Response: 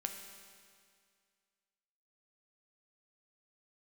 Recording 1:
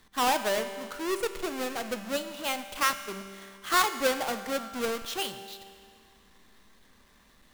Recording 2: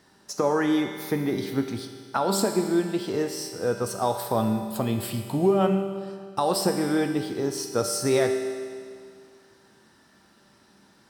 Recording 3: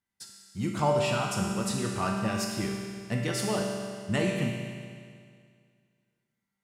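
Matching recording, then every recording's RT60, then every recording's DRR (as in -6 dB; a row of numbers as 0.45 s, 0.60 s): 2; 2.1 s, 2.1 s, 2.1 s; 8.0 dB, 3.5 dB, -2.5 dB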